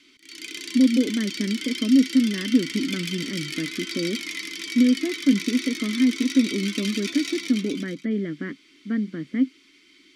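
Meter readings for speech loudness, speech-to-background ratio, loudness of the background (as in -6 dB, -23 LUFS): -24.0 LUFS, 7.5 dB, -31.5 LUFS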